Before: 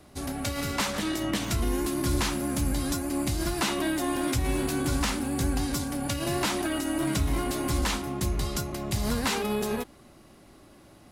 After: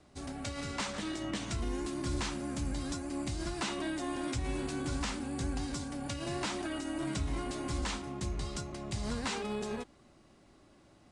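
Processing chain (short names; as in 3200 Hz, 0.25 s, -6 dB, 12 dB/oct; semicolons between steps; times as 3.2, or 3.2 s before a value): steep low-pass 9200 Hz 48 dB/oct; gain -8 dB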